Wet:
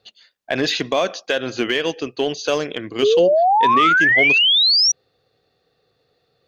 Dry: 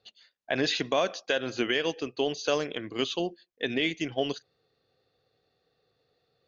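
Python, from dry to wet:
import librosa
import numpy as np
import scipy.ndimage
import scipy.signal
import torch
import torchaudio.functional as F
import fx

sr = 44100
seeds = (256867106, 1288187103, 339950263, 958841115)

p1 = np.clip(x, -10.0 ** (-22.0 / 20.0), 10.0 ** (-22.0 / 20.0))
p2 = x + F.gain(torch.from_numpy(p1), -5.0).numpy()
p3 = fx.spec_paint(p2, sr, seeds[0], shape='rise', start_s=3.02, length_s=1.9, low_hz=390.0, high_hz=5900.0, level_db=-18.0)
y = F.gain(torch.from_numpy(p3), 3.5).numpy()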